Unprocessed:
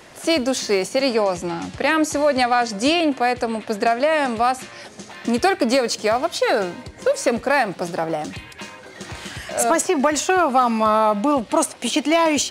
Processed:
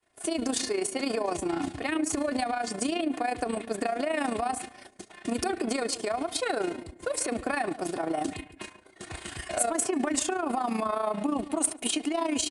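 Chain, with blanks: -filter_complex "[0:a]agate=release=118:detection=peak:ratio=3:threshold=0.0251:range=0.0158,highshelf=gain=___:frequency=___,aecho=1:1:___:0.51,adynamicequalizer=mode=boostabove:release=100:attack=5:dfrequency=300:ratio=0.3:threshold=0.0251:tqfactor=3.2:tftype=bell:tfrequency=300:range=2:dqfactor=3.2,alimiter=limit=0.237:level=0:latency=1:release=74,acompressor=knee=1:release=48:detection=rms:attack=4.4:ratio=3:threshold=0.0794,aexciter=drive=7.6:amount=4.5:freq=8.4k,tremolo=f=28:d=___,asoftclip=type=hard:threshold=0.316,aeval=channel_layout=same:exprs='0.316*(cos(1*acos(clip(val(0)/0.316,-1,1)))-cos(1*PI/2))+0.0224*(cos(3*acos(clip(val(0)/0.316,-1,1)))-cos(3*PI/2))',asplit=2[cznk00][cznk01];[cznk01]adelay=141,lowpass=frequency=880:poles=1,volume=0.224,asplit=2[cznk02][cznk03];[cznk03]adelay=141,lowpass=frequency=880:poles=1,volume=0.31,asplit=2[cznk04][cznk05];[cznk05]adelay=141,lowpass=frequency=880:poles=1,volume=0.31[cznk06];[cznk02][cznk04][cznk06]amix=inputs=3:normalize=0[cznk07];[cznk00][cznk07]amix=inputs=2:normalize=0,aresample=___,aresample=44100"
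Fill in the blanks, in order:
-8.5, 8k, 2.8, 0.667, 22050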